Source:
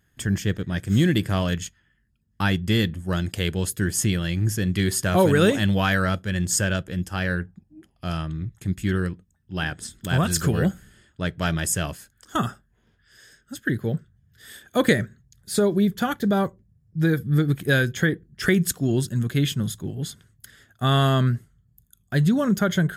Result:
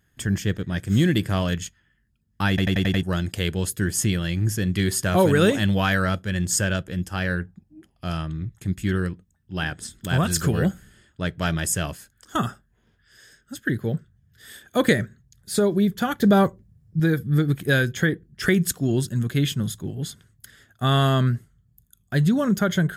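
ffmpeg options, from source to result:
-filter_complex "[0:a]asettb=1/sr,asplit=3[a][b][c];[a]atrim=end=16.194[d];[b]atrim=start=16.19:end=17,asetpts=PTS-STARTPTS,afade=t=in:d=0.004:c=qsin,afade=t=out:st=0.806:d=0.004:c=qsin,acontrast=30[e];[c]atrim=start=16.996[f];[d][e]acrossfade=d=0.004:c1=hsin:c2=qsin[g];[g][f]acrossfade=d=0.004:c1=qsin:c2=hsin,asplit=7[h][i][j][k][l][m][n];[h]atrim=end=2.582[o];[i]atrim=start=2.488:end=2.582[p];[j]atrim=start=2.488:end=2.582[q];[k]atrim=start=2.488:end=2.582[r];[l]atrim=start=2.488:end=2.582[s];[m]atrim=start=2.488:end=2.582[t];[n]atrim=start=3.028[u];[o][p]acrossfade=d=0.004:c1=hsin:c2=hsin[v];[v][q]acrossfade=d=0.004:c1=hsin:c2=hsin[w];[w][r]acrossfade=d=0.004:c1=hsin:c2=hsin[x];[x][s]acrossfade=d=0.004:c1=hsin:c2=hsin[y];[y][t]acrossfade=d=0.004:c1=hsin:c2=hsin[z];[z][u]acrossfade=d=0.004:c1=hsin:c2=hsin"

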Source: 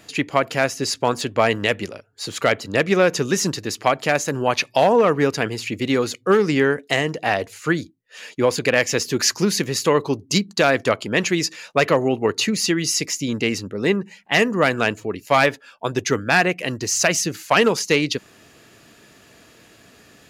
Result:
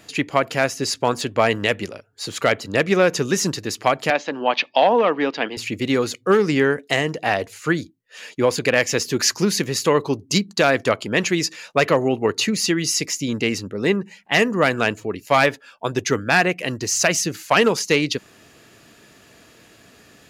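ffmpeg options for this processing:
-filter_complex "[0:a]asettb=1/sr,asplit=3[a][b][c];[a]atrim=end=4.104[d];[b]atrim=start=4.1:end=5.57,asetpts=PTS-STARTPTS,afade=t=in:d=0.004:c=qsin,afade=t=out:st=1.466:d=0.004:c=qsin,highpass=f=230:w=0.5412,highpass=f=230:w=1.3066,equalizer=f=400:t=q:w=4:g=-6,equalizer=f=820:t=q:w=4:g=3,equalizer=f=1.4k:t=q:w=4:g=-3,equalizer=f=3.2k:t=q:w=4:g=5,lowpass=f=4.3k:w=0.5412,lowpass=f=4.3k:w=1.3066[e];[c]atrim=start=5.566[f];[d][e]acrossfade=d=0.004:c1=hsin:c2=qsin[g];[g][f]acrossfade=d=0.004:c1=qsin:c2=hsin"

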